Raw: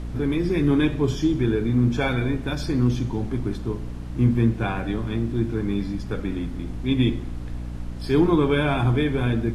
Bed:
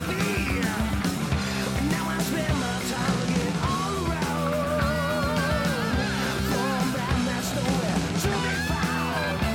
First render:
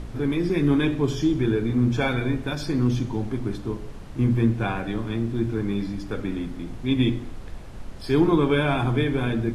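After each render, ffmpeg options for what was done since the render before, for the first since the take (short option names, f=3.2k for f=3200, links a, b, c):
-af "bandreject=f=60:t=h:w=4,bandreject=f=120:t=h:w=4,bandreject=f=180:t=h:w=4,bandreject=f=240:t=h:w=4,bandreject=f=300:t=h:w=4,bandreject=f=360:t=h:w=4,bandreject=f=420:t=h:w=4"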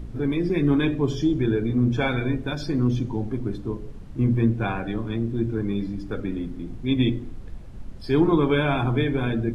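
-af "afftdn=nr=9:nf=-38"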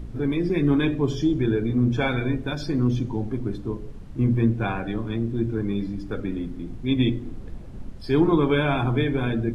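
-filter_complex "[0:a]asettb=1/sr,asplit=3[a][b][c];[a]atrim=end=7.254[d];[b]atrim=start=7.25:end=7.9,asetpts=PTS-STARTPTS,afade=t=in:d=0.004:c=qsin,afade=t=out:st=0.646:d=0.004:c=qsin,equalizer=f=300:w=0.49:g=5.5[e];[c]atrim=start=7.896[f];[d][e]acrossfade=d=0.004:c1=hsin:c2=qsin[g];[g][f]acrossfade=d=0.004:c1=qsin:c2=hsin"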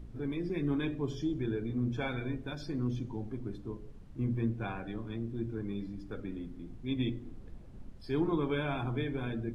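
-af "volume=-11.5dB"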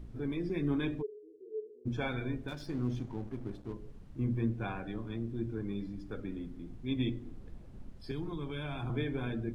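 -filter_complex "[0:a]asplit=3[a][b][c];[a]afade=t=out:st=1.01:d=0.02[d];[b]asuperpass=centerf=430:order=4:qfactor=7.6,afade=t=in:st=1.01:d=0.02,afade=t=out:st=1.85:d=0.02[e];[c]afade=t=in:st=1.85:d=0.02[f];[d][e][f]amix=inputs=3:normalize=0,asettb=1/sr,asplit=3[g][h][i];[g]atrim=end=2.484[j];[h]atrim=start=2.48:end=3.74,asetpts=PTS-STARTPTS,afade=t=in:d=0.004:c=qsin,afade=t=out:st=1.256:d=0.004:c=qsin,aeval=exprs='sgn(val(0))*max(abs(val(0))-0.00237,0)':c=same[k];[i]atrim=start=3.736[l];[j][k]acrossfade=d=0.004:c1=hsin:c2=qsin[m];[m][l]acrossfade=d=0.004:c1=qsin:c2=hsin,asettb=1/sr,asplit=3[n][o][p];[n]atrim=end=8.114[q];[o]atrim=start=8.11:end=8.9,asetpts=PTS-STARTPTS,afade=t=in:d=0.004:c=qsin,afade=t=out:st=0.786:d=0.004:c=qsin,acrossover=split=150|3000[r][s][t];[s]acompressor=threshold=-39dB:ratio=6:attack=3.2:release=140:knee=2.83:detection=peak[u];[r][u][t]amix=inputs=3:normalize=0[v];[p]atrim=start=8.896[w];[q][v]acrossfade=d=0.004:c1=hsin:c2=qsin[x];[x][w]acrossfade=d=0.004:c1=qsin:c2=hsin"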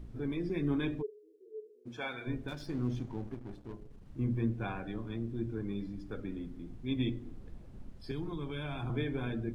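-filter_complex "[0:a]asplit=3[a][b][c];[a]afade=t=out:st=1.09:d=0.02[d];[b]highpass=f=700:p=1,afade=t=in:st=1.09:d=0.02,afade=t=out:st=2.26:d=0.02[e];[c]afade=t=in:st=2.26:d=0.02[f];[d][e][f]amix=inputs=3:normalize=0,asettb=1/sr,asplit=3[g][h][i];[g]atrim=end=3.344[j];[h]atrim=start=3.34:end=4.06,asetpts=PTS-STARTPTS,afade=t=in:d=0.004:c=qsin,afade=t=out:st=0.716:d=0.004:c=qsin,aeval=exprs='(tanh(79.4*val(0)+0.5)-tanh(0.5))/79.4':c=same[k];[i]atrim=start=4.056[l];[j][k]acrossfade=d=0.004:c1=hsin:c2=qsin[m];[m][l]acrossfade=d=0.004:c1=qsin:c2=hsin"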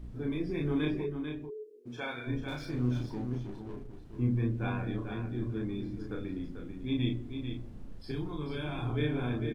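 -filter_complex "[0:a]asplit=2[a][b];[b]adelay=33,volume=-2.5dB[c];[a][c]amix=inputs=2:normalize=0,asplit=2[d][e];[e]aecho=0:1:442:0.422[f];[d][f]amix=inputs=2:normalize=0"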